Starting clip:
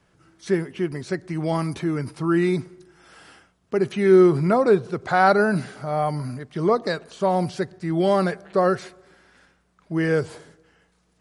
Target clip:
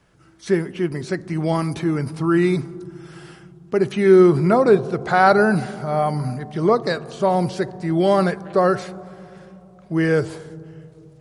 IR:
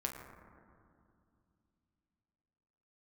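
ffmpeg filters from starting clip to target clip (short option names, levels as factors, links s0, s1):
-filter_complex "[0:a]asplit=2[s0][s1];[1:a]atrim=start_sample=2205,asetrate=29106,aresample=44100,lowshelf=f=170:g=8.5[s2];[s1][s2]afir=irnorm=-1:irlink=0,volume=0.141[s3];[s0][s3]amix=inputs=2:normalize=0,volume=1.19"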